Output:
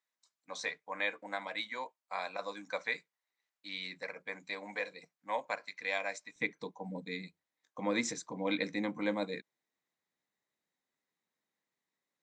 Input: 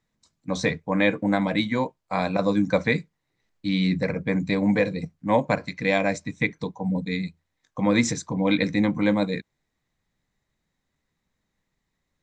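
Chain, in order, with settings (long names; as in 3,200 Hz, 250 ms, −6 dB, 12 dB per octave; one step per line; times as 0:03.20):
high-pass filter 800 Hz 12 dB per octave, from 0:06.36 310 Hz
level −9 dB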